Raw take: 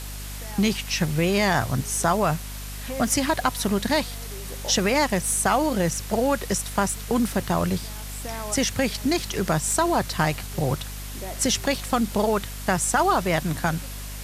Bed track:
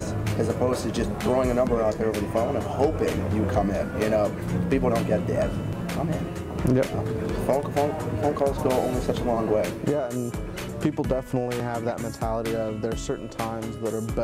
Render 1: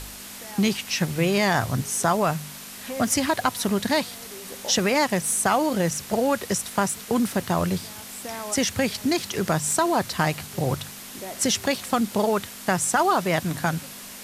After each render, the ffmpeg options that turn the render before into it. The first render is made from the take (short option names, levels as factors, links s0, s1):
-af "bandreject=f=50:t=h:w=4,bandreject=f=100:t=h:w=4,bandreject=f=150:t=h:w=4"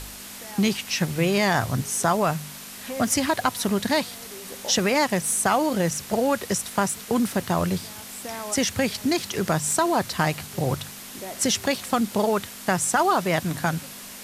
-af anull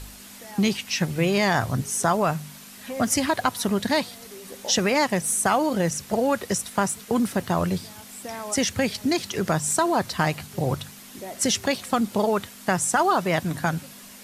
-af "afftdn=nr=6:nf=-40"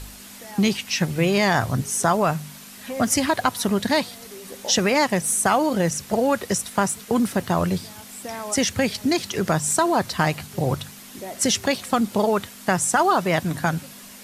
-af "volume=1.26"